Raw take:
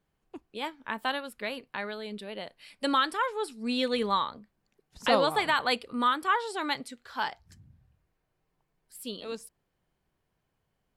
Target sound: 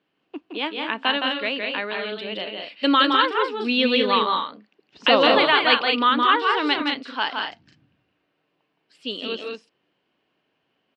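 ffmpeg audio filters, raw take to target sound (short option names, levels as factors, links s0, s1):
-filter_complex "[0:a]highpass=260,equalizer=f=290:t=q:w=4:g=7,equalizer=f=850:t=q:w=4:g=-3,equalizer=f=2800:t=q:w=4:g=9,lowpass=f=4600:w=0.5412,lowpass=f=4600:w=1.3066,asplit=2[s0][s1];[s1]aecho=0:1:166.2|204.1:0.631|0.501[s2];[s0][s2]amix=inputs=2:normalize=0,volume=2.11"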